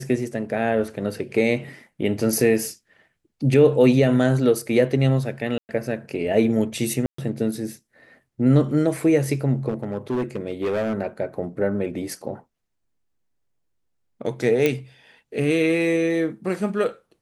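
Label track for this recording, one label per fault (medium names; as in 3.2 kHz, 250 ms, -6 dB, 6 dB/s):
5.580000	5.690000	dropout 109 ms
7.060000	7.180000	dropout 124 ms
9.680000	10.950000	clipped -20 dBFS
14.660000	14.660000	pop -7 dBFS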